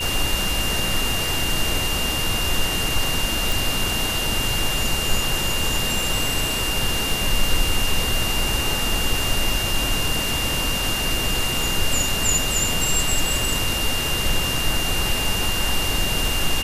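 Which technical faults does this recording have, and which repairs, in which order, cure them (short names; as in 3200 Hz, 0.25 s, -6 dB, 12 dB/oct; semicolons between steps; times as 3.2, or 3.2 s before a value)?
crackle 43/s -29 dBFS
tone 2800 Hz -25 dBFS
3.52 pop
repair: de-click; notch 2800 Hz, Q 30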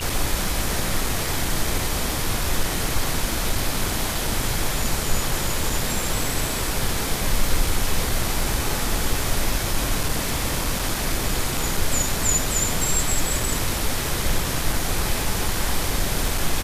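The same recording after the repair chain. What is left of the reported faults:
none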